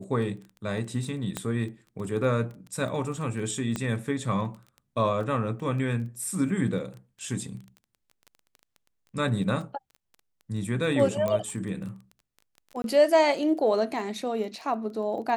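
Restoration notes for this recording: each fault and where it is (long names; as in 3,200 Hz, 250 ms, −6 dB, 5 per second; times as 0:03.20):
surface crackle 13 per second −36 dBFS
0:01.37: click −15 dBFS
0:03.76: click −16 dBFS
0:11.28: click −16 dBFS
0:12.82–0:12.84: drop-out 22 ms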